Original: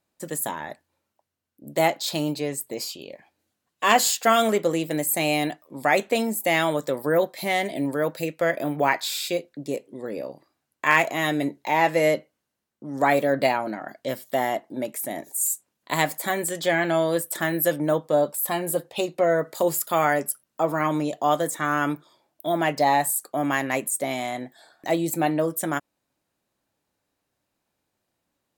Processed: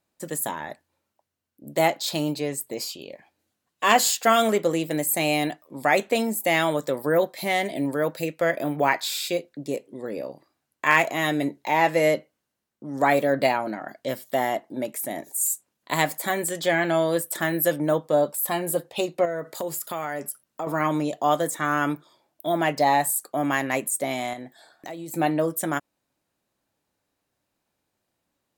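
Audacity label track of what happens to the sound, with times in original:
19.250000	20.670000	compression 3:1, threshold -28 dBFS
24.330000	25.140000	compression 10:1, threshold -32 dBFS

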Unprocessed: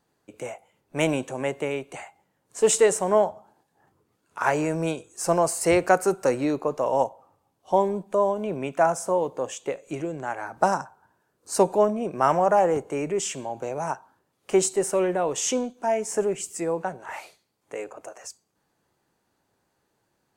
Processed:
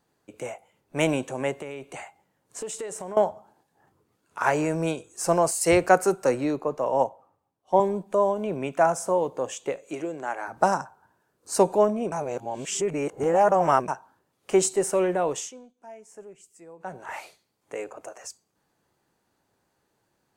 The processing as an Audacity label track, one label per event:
1.520000	3.170000	compression, threshold -32 dBFS
5.510000	7.800000	three bands expanded up and down depth 40%
9.860000	10.480000	high-pass 250 Hz
12.120000	13.880000	reverse
15.310000	16.980000	dip -20 dB, fades 0.19 s

